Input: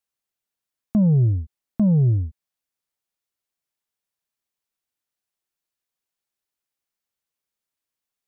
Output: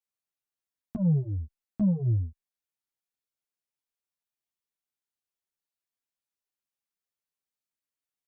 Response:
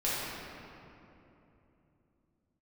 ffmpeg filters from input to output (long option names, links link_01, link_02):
-filter_complex "[0:a]asplit=2[link_01][link_02];[link_02]adelay=10,afreqshift=-0.79[link_03];[link_01][link_03]amix=inputs=2:normalize=1,volume=-5dB"